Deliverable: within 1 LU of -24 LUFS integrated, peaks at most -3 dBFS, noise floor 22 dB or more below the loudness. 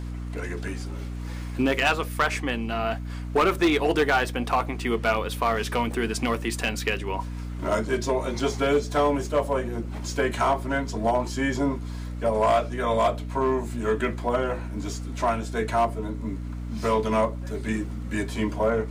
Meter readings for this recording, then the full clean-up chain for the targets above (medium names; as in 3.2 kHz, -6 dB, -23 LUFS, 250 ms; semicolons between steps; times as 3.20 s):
clipped samples 0.9%; clipping level -15.0 dBFS; hum 60 Hz; highest harmonic 300 Hz; hum level -31 dBFS; loudness -26.0 LUFS; peak level -15.0 dBFS; loudness target -24.0 LUFS
-> clip repair -15 dBFS; de-hum 60 Hz, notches 5; trim +2 dB